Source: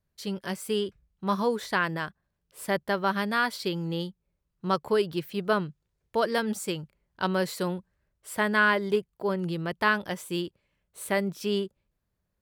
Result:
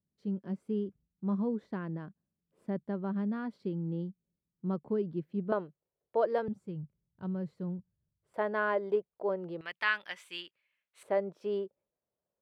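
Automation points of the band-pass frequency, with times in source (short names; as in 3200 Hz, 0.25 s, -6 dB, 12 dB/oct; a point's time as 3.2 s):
band-pass, Q 1.7
220 Hz
from 5.52 s 560 Hz
from 6.48 s 130 Hz
from 8.34 s 580 Hz
from 9.61 s 2300 Hz
from 11.03 s 570 Hz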